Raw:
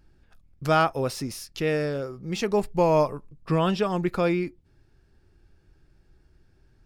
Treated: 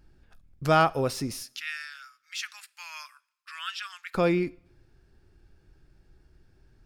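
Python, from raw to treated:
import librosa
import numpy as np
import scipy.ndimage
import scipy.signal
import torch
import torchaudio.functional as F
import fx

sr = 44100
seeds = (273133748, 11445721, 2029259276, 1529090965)

y = fx.ellip_highpass(x, sr, hz=1400.0, order=4, stop_db=70, at=(1.43, 4.15))
y = fx.rev_double_slope(y, sr, seeds[0], early_s=0.57, late_s=1.6, knee_db=-22, drr_db=19.5)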